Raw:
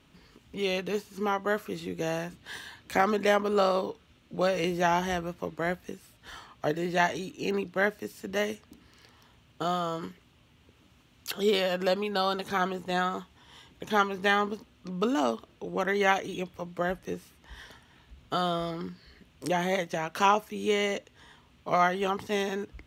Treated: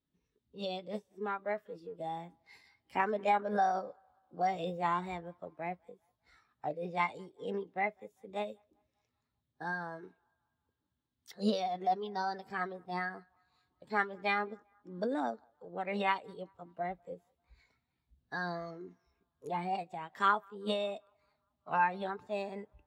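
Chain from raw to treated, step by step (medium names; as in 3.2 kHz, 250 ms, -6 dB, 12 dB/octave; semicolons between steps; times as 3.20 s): formant shift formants +4 st; band-passed feedback delay 196 ms, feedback 68%, band-pass 1.1 kHz, level -21 dB; spectral contrast expander 1.5:1; trim -6 dB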